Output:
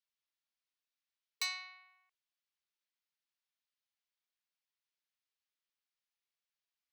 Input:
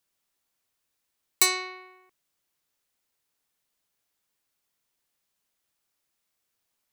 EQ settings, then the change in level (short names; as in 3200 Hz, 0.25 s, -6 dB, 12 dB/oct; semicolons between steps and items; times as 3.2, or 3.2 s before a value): brick-wall FIR high-pass 450 Hz; air absorption 250 m; differentiator; +1.5 dB